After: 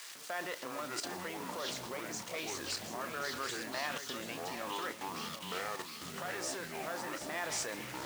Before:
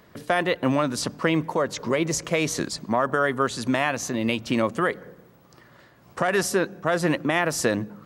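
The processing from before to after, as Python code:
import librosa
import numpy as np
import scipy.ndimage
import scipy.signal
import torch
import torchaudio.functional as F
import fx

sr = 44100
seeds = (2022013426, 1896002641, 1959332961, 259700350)

y = x + 0.5 * 10.0 ** (-23.0 / 20.0) * np.diff(np.sign(x), prepend=np.sign(x[:1]))
y = scipy.signal.sosfilt(scipy.signal.butter(4, 8400.0, 'lowpass', fs=sr, output='sos'), y)
y = fx.high_shelf(y, sr, hz=2300.0, db=-8.5)
y = y + 10.0 ** (-19.0 / 20.0) * np.pad(y, (int(133 * sr / 1000.0), 0))[:len(y)]
y = fx.echo_pitch(y, sr, ms=226, semitones=-6, count=3, db_per_echo=-3.0)
y = fx.cheby_harmonics(y, sr, harmonics=(4, 7), levels_db=(-20, -37), full_scale_db=-6.5)
y = fx.level_steps(y, sr, step_db=16)
y = fx.doubler(y, sr, ms=33.0, db=-13.0)
y = fx.quant_dither(y, sr, seeds[0], bits=8, dither='none')
y = fx.highpass(y, sr, hz=1300.0, slope=6)
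y = y + 10.0 ** (-9.5 / 20.0) * np.pad(y, (int(736 * sr / 1000.0), 0))[:len(y)]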